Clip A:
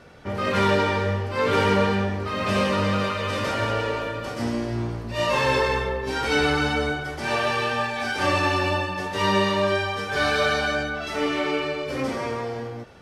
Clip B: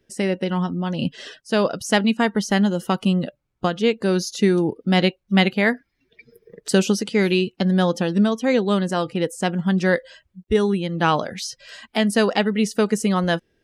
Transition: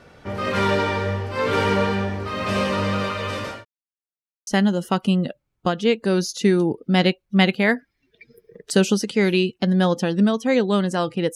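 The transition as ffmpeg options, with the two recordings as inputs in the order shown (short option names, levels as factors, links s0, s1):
-filter_complex "[0:a]apad=whole_dur=11.35,atrim=end=11.35,asplit=2[s0][s1];[s0]atrim=end=3.65,asetpts=PTS-STARTPTS,afade=t=out:st=3.2:d=0.45:c=qsin[s2];[s1]atrim=start=3.65:end=4.47,asetpts=PTS-STARTPTS,volume=0[s3];[1:a]atrim=start=2.45:end=9.33,asetpts=PTS-STARTPTS,afade=t=in:d=0.004:c=hsin[s4];[s2][s3][s4]concat=n=3:v=0:a=1"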